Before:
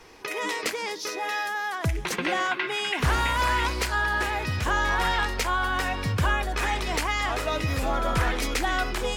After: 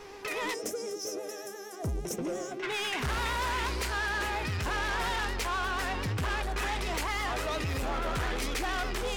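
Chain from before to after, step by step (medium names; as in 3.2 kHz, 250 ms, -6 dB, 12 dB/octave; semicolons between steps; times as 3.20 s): time-frequency box 0.54–2.63 s, 730–5100 Hz -21 dB; saturation -28.5 dBFS, distortion -8 dB; mains buzz 400 Hz, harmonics 19, -48 dBFS -8 dB/octave; vibrato 8.5 Hz 61 cents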